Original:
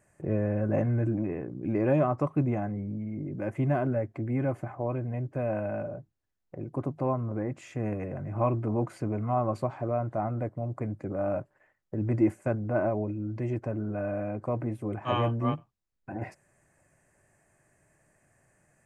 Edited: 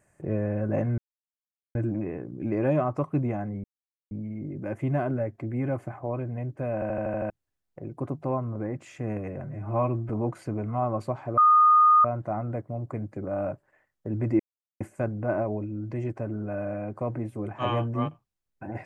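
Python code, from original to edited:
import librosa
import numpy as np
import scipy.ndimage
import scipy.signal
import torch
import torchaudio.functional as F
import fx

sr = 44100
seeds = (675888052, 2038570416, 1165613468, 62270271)

y = fx.edit(x, sr, fx.insert_silence(at_s=0.98, length_s=0.77),
    fx.insert_silence(at_s=2.87, length_s=0.47),
    fx.stutter_over(start_s=5.5, slice_s=0.08, count=7),
    fx.stretch_span(start_s=8.21, length_s=0.43, factor=1.5),
    fx.insert_tone(at_s=9.92, length_s=0.67, hz=1230.0, db=-14.0),
    fx.insert_silence(at_s=12.27, length_s=0.41), tone=tone)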